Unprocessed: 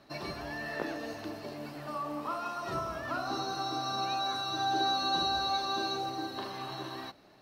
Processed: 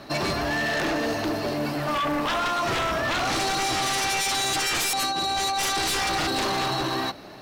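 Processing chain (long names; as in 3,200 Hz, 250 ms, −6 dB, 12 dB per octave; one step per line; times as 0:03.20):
0:04.93–0:06.68: compressor whose output falls as the input rises −34 dBFS, ratio −0.5
sine wavefolder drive 16 dB, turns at −18.5 dBFS
level −3.5 dB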